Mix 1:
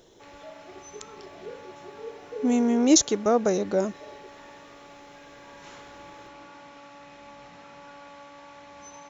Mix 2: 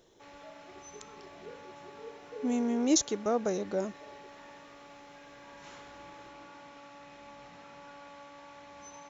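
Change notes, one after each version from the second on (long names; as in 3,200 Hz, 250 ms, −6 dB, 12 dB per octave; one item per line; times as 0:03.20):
speech −7.5 dB
background −3.5 dB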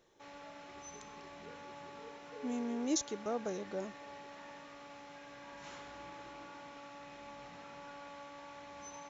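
speech −8.0 dB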